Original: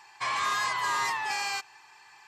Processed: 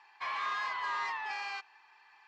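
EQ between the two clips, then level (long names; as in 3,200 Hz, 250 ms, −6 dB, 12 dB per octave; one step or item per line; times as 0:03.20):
high-pass filter 820 Hz 6 dB per octave
high-frequency loss of the air 240 metres
−3.0 dB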